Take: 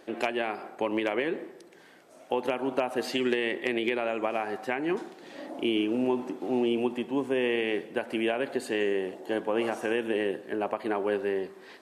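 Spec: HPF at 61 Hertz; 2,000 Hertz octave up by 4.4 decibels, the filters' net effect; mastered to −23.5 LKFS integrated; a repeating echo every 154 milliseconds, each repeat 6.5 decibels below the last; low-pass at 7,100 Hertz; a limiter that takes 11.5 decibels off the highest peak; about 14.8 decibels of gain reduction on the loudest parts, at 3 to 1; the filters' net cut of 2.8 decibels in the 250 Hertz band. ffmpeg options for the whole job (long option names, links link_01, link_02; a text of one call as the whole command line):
ffmpeg -i in.wav -af "highpass=61,lowpass=7100,equalizer=frequency=250:width_type=o:gain=-4,equalizer=frequency=2000:width_type=o:gain=5.5,acompressor=threshold=-44dB:ratio=3,alimiter=level_in=12dB:limit=-24dB:level=0:latency=1,volume=-12dB,aecho=1:1:154|308|462|616|770|924:0.473|0.222|0.105|0.0491|0.0231|0.0109,volume=22dB" out.wav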